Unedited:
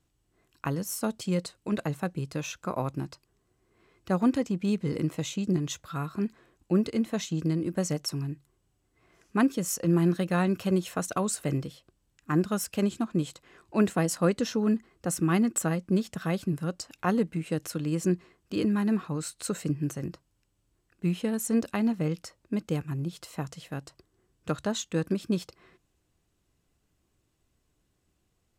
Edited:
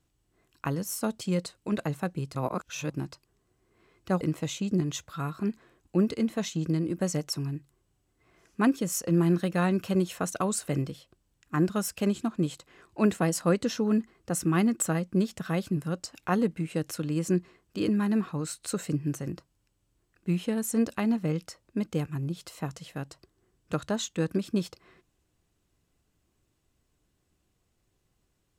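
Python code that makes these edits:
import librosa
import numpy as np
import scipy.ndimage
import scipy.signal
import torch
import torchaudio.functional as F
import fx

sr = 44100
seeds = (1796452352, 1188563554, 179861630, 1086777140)

y = fx.edit(x, sr, fx.reverse_span(start_s=2.35, length_s=0.55),
    fx.cut(start_s=4.21, length_s=0.76), tone=tone)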